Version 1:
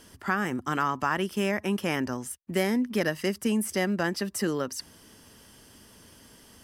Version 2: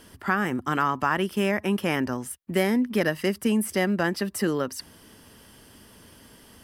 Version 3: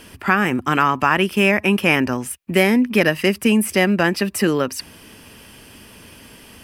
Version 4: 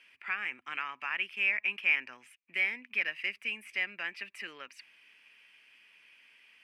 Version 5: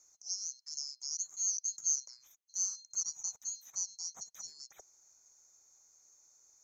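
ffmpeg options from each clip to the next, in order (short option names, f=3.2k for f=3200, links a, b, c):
-af "equalizer=f=6.4k:t=o:w=0.81:g=-6,volume=3dB"
-af "equalizer=f=2.5k:t=o:w=0.31:g=11,volume=7dB"
-af "bandpass=f=2.3k:t=q:w=4.3:csg=0,volume=-6.5dB"
-af "afftfilt=real='real(if(lt(b,736),b+184*(1-2*mod(floor(b/184),2)),b),0)':imag='imag(if(lt(b,736),b+184*(1-2*mod(floor(b/184),2)),b),0)':win_size=2048:overlap=0.75,volume=-4.5dB"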